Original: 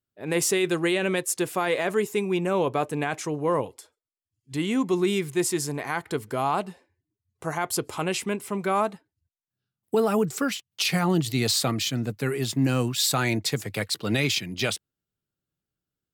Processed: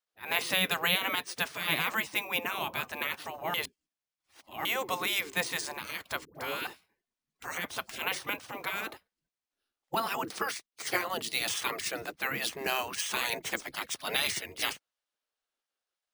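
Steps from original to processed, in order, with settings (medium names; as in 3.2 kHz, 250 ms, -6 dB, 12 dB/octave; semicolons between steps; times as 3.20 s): spectral gate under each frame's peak -15 dB weak; 6.25–6.67 s: phase dispersion highs, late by 102 ms, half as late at 660 Hz; careless resampling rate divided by 3×, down filtered, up hold; 3.54–4.65 s: reverse; 10.66–11.50 s: upward expansion 1.5:1, over -46 dBFS; trim +5 dB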